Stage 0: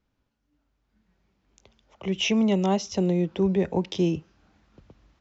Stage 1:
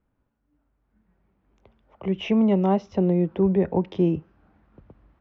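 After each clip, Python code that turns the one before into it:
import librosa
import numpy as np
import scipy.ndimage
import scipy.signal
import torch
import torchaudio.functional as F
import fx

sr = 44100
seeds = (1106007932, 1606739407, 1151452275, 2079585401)

y = scipy.signal.sosfilt(scipy.signal.butter(2, 1600.0, 'lowpass', fs=sr, output='sos'), x)
y = y * librosa.db_to_amplitude(2.5)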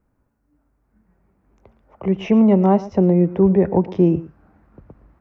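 y = fx.peak_eq(x, sr, hz=3300.0, db=-10.5, octaves=0.75)
y = y + 10.0 ** (-17.5 / 20.0) * np.pad(y, (int(114 * sr / 1000.0), 0))[:len(y)]
y = y * librosa.db_to_amplitude(6.0)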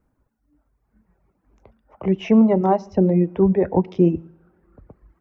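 y = fx.rev_double_slope(x, sr, seeds[0], early_s=0.64, late_s=3.0, knee_db=-20, drr_db=11.5)
y = fx.dereverb_blind(y, sr, rt60_s=1.6)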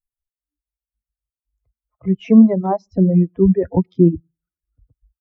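y = fx.bin_expand(x, sr, power=2.0)
y = fx.low_shelf(y, sr, hz=450.0, db=11.5)
y = y * librosa.db_to_amplitude(-2.5)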